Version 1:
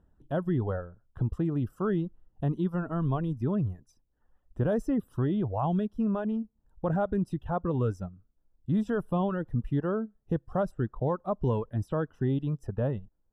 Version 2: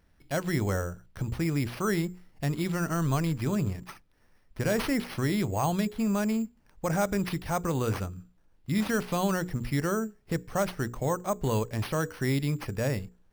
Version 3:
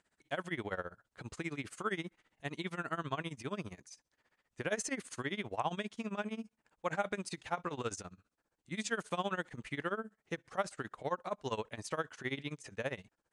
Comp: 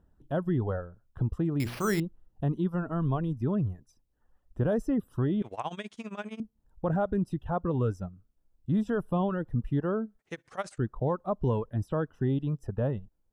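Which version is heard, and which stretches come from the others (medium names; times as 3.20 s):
1
1.60–2.00 s: from 2
5.42–6.40 s: from 3
10.19–10.78 s: from 3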